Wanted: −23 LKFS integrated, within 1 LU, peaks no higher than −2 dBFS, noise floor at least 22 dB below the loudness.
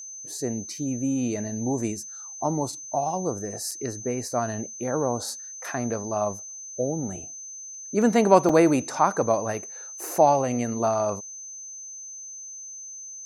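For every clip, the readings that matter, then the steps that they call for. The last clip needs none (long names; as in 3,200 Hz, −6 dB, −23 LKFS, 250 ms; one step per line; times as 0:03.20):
number of dropouts 2; longest dropout 4.3 ms; interfering tone 6,200 Hz; level of the tone −37 dBFS; integrated loudness −25.5 LKFS; sample peak −3.0 dBFS; target loudness −23.0 LKFS
→ repair the gap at 0:03.71/0:08.49, 4.3 ms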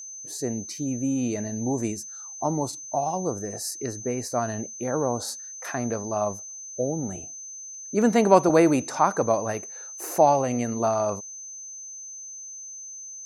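number of dropouts 0; interfering tone 6,200 Hz; level of the tone −37 dBFS
→ notch filter 6,200 Hz, Q 30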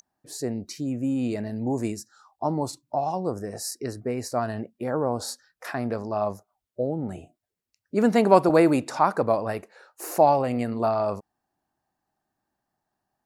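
interfering tone none found; integrated loudness −25.5 LKFS; sample peak −3.0 dBFS; target loudness −23.0 LKFS
→ level +2.5 dB
brickwall limiter −2 dBFS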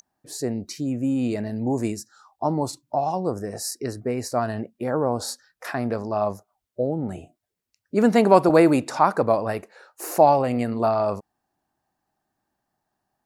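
integrated loudness −23.5 LKFS; sample peak −2.0 dBFS; background noise floor −82 dBFS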